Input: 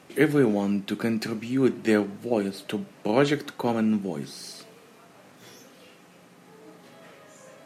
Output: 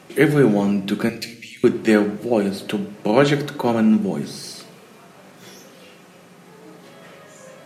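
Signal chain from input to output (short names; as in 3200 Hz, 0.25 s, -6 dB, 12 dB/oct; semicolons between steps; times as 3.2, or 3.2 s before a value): 1.09–1.64 elliptic high-pass 2000 Hz; shoebox room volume 2500 m³, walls furnished, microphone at 1 m; gain +5.5 dB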